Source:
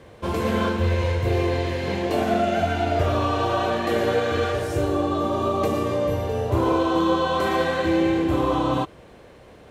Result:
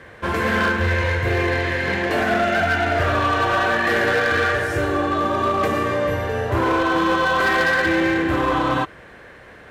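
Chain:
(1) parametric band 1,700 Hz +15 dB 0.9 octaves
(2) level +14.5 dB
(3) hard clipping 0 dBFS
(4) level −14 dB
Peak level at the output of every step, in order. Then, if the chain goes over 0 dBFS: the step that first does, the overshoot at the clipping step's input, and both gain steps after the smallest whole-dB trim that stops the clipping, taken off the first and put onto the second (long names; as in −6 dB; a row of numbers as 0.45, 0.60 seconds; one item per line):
−6.0, +8.5, 0.0, −14.0 dBFS
step 2, 8.5 dB
step 2 +5.5 dB, step 4 −5 dB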